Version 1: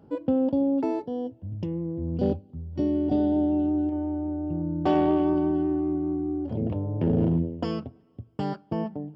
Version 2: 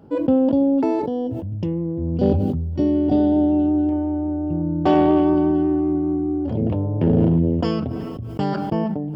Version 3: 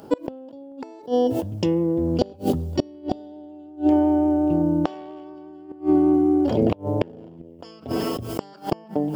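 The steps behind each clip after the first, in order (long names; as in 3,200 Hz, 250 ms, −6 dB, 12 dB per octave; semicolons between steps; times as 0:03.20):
level that may fall only so fast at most 23 dB per second; level +6 dB
bass and treble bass −13 dB, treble +13 dB; gate with flip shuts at −16 dBFS, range −28 dB; level +8.5 dB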